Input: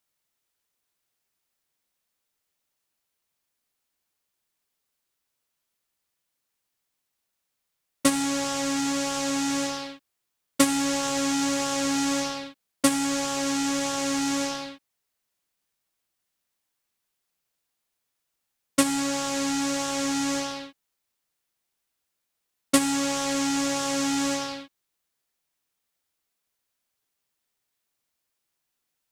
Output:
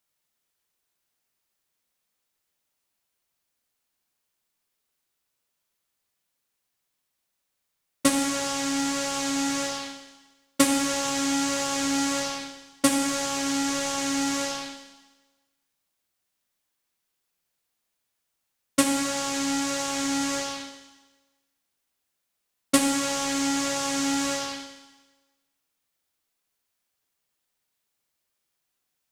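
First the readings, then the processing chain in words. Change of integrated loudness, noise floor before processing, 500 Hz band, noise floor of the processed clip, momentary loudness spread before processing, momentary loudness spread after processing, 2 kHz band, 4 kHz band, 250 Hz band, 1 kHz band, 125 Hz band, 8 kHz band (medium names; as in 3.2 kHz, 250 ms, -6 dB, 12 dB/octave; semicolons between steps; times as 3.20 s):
0.0 dB, -81 dBFS, -0.5 dB, -80 dBFS, 10 LU, 11 LU, +1.0 dB, +1.0 dB, -0.5 dB, 0.0 dB, -1.5 dB, +1.0 dB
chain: Schroeder reverb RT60 1.2 s, combs from 31 ms, DRR 6 dB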